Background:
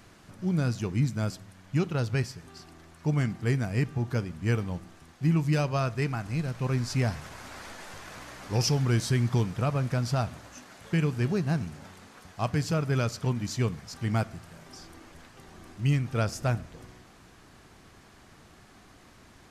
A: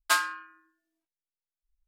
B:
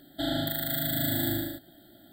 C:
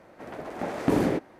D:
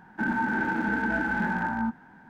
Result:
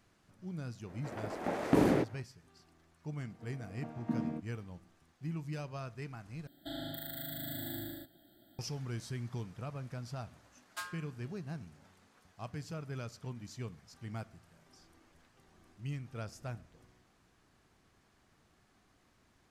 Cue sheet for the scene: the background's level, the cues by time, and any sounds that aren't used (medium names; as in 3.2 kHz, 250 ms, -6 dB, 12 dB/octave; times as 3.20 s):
background -15 dB
0.85 s: add C -3.5 dB, fades 0.05 s
3.20 s: add C -11.5 dB + vocoder on a held chord bare fifth, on D#3
6.47 s: replace with B -9 dB + compression 1.5:1, threshold -34 dBFS
10.67 s: add A -18 dB
not used: D